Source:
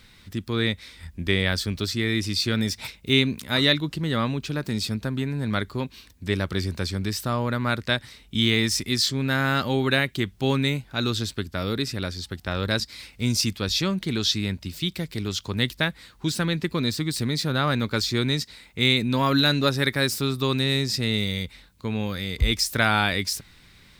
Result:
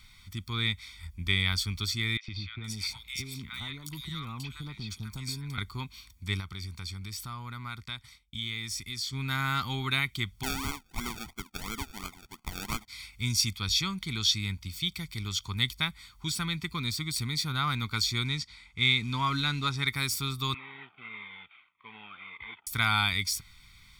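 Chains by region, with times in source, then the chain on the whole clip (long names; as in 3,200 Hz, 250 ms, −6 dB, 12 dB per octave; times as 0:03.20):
0:02.17–0:05.58: downward compressor, threshold −26 dBFS + three-band delay without the direct sound mids, lows, highs 110/470 ms, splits 1,200/3,600 Hz
0:06.40–0:09.13: downward compressor 2 to 1, threshold −35 dBFS + downward expander −41 dBFS
0:10.43–0:12.88: linear-phase brick-wall band-pass 190–3,700 Hz + sample-and-hold swept by an LFO 34×, swing 60% 2.9 Hz
0:18.25–0:19.88: log-companded quantiser 6 bits + high-frequency loss of the air 71 metres
0:20.54–0:22.67: variable-slope delta modulation 16 kbit/s + high-pass filter 550 Hz + phaser whose notches keep moving one way falling 1.7 Hz
whole clip: de-essing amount 25%; parametric band 320 Hz −12.5 dB 2.7 octaves; comb filter 0.9 ms, depth 83%; level −4 dB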